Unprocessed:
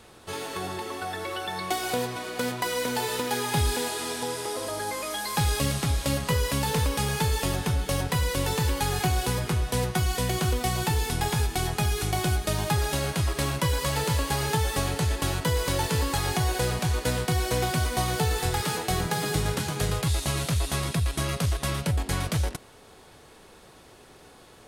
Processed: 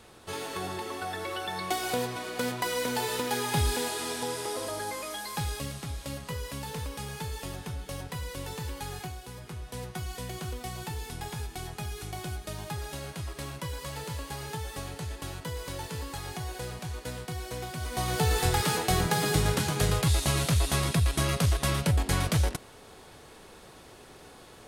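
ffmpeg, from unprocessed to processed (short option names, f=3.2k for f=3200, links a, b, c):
-af "volume=17dB,afade=t=out:st=4.59:d=1.13:silence=0.354813,afade=t=out:st=8.94:d=0.27:silence=0.446684,afade=t=in:st=9.21:d=0.76:silence=0.446684,afade=t=in:st=17.78:d=0.59:silence=0.251189"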